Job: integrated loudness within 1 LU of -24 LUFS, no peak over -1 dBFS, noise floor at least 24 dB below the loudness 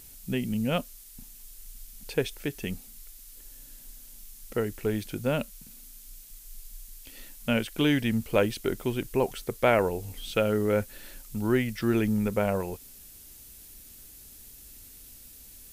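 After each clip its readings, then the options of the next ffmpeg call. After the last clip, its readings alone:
noise floor -49 dBFS; noise floor target -53 dBFS; loudness -28.5 LUFS; peak -9.0 dBFS; loudness target -24.0 LUFS
-> -af "afftdn=nr=6:nf=-49"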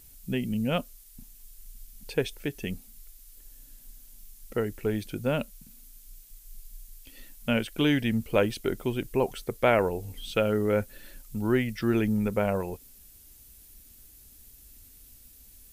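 noise floor -53 dBFS; loudness -28.5 LUFS; peak -9.0 dBFS; loudness target -24.0 LUFS
-> -af "volume=4.5dB"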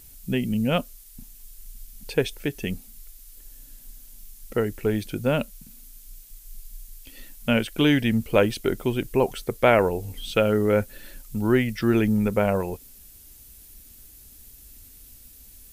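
loudness -24.0 LUFS; peak -4.5 dBFS; noise floor -49 dBFS

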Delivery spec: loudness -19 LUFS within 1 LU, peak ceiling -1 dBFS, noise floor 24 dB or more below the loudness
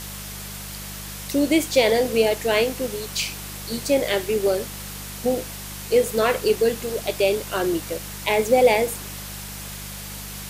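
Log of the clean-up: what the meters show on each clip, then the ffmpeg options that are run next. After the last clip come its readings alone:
hum 50 Hz; harmonics up to 200 Hz; hum level -36 dBFS; noise floor -35 dBFS; noise floor target -46 dBFS; loudness -22.0 LUFS; peak -6.0 dBFS; loudness target -19.0 LUFS
-> -af "bandreject=f=50:t=h:w=4,bandreject=f=100:t=h:w=4,bandreject=f=150:t=h:w=4,bandreject=f=200:t=h:w=4"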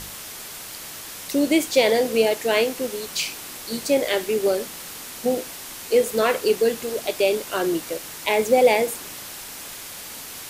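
hum none; noise floor -37 dBFS; noise floor target -46 dBFS
-> -af "afftdn=nr=9:nf=-37"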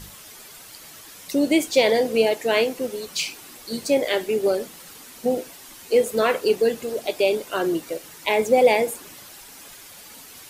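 noise floor -44 dBFS; noise floor target -46 dBFS
-> -af "afftdn=nr=6:nf=-44"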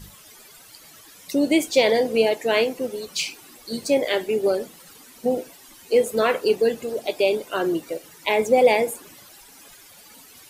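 noise floor -48 dBFS; loudness -22.0 LUFS; peak -6.0 dBFS; loudness target -19.0 LUFS
-> -af "volume=3dB"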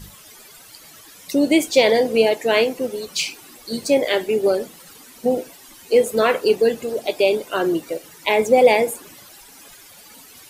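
loudness -19.0 LUFS; peak -3.0 dBFS; noise floor -45 dBFS

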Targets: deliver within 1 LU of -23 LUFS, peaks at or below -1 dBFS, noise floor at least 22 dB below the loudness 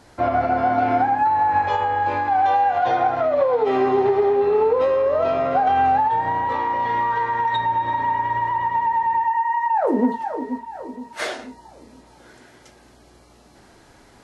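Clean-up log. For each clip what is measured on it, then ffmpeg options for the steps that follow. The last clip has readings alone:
loudness -20.0 LUFS; peak -9.0 dBFS; loudness target -23.0 LUFS
-> -af "volume=-3dB"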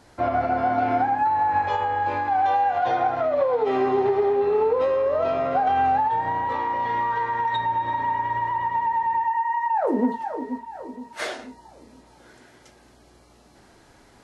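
loudness -23.0 LUFS; peak -12.0 dBFS; noise floor -54 dBFS

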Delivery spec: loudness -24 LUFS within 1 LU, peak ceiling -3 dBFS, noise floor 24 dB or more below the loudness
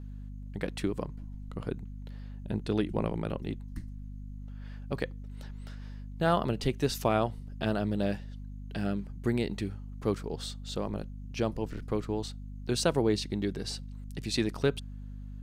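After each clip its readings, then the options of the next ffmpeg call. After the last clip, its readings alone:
hum 50 Hz; harmonics up to 250 Hz; hum level -39 dBFS; loudness -33.0 LUFS; peak -13.0 dBFS; loudness target -24.0 LUFS
-> -af "bandreject=f=50:t=h:w=4,bandreject=f=100:t=h:w=4,bandreject=f=150:t=h:w=4,bandreject=f=200:t=h:w=4,bandreject=f=250:t=h:w=4"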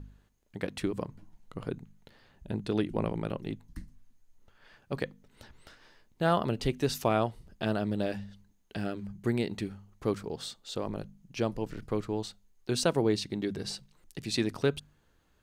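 hum none; loudness -33.0 LUFS; peak -13.0 dBFS; loudness target -24.0 LUFS
-> -af "volume=9dB"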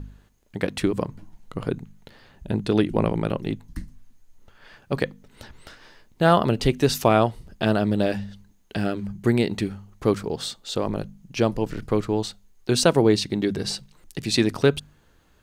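loudness -24.0 LUFS; peak -4.0 dBFS; noise floor -58 dBFS

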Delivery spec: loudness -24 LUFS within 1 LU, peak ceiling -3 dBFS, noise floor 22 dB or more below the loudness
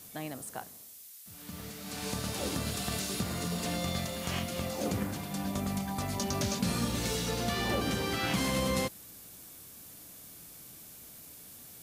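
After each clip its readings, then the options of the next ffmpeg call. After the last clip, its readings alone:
noise floor -51 dBFS; noise floor target -55 dBFS; loudness -33.0 LUFS; peak -17.5 dBFS; loudness target -24.0 LUFS
-> -af "afftdn=nr=6:nf=-51"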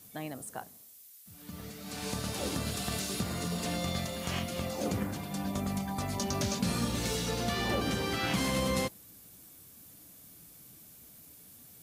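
noise floor -55 dBFS; noise floor target -56 dBFS
-> -af "afftdn=nr=6:nf=-55"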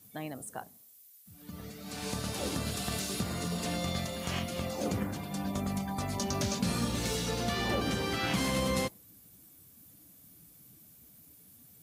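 noise floor -58 dBFS; loudness -33.5 LUFS; peak -17.5 dBFS; loudness target -24.0 LUFS
-> -af "volume=9.5dB"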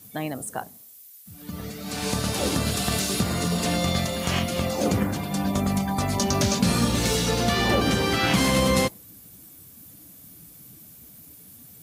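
loudness -24.0 LUFS; peak -8.0 dBFS; noise floor -48 dBFS

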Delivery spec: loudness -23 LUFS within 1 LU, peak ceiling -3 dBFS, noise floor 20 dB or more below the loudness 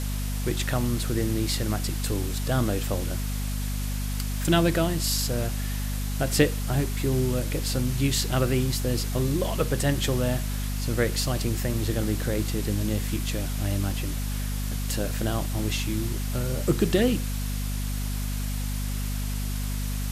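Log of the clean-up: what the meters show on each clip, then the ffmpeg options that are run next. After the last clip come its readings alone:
hum 50 Hz; harmonics up to 250 Hz; hum level -26 dBFS; noise floor -29 dBFS; noise floor target -47 dBFS; loudness -27.0 LUFS; peak -7.5 dBFS; loudness target -23.0 LUFS
-> -af "bandreject=f=50:t=h:w=6,bandreject=f=100:t=h:w=6,bandreject=f=150:t=h:w=6,bandreject=f=200:t=h:w=6,bandreject=f=250:t=h:w=6"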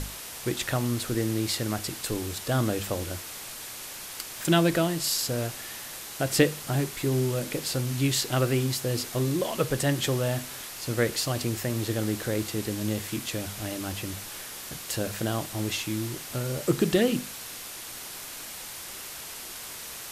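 hum none; noise floor -40 dBFS; noise floor target -49 dBFS
-> -af "afftdn=nr=9:nf=-40"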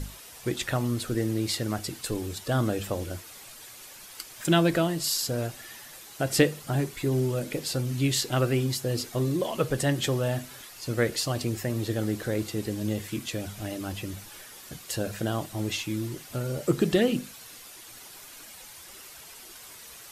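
noise floor -47 dBFS; noise floor target -49 dBFS
-> -af "afftdn=nr=6:nf=-47"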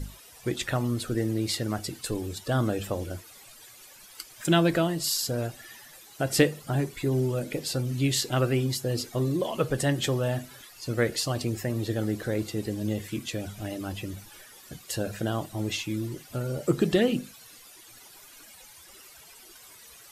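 noise floor -51 dBFS; loudness -28.5 LUFS; peak -7.5 dBFS; loudness target -23.0 LUFS
-> -af "volume=5.5dB,alimiter=limit=-3dB:level=0:latency=1"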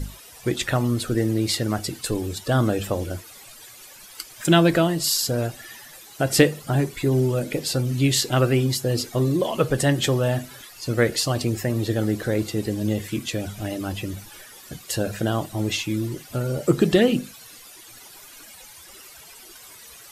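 loudness -23.0 LUFS; peak -3.0 dBFS; noise floor -45 dBFS

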